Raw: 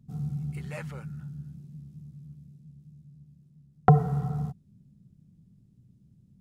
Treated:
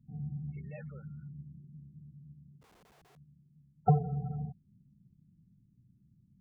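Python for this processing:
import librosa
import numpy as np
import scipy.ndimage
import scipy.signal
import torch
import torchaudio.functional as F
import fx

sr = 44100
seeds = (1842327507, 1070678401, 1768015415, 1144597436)

y = fx.spec_topn(x, sr, count=16)
y = fx.overflow_wrap(y, sr, gain_db=52.0, at=(2.61, 3.15), fade=0.02)
y = y * 10.0 ** (-6.5 / 20.0)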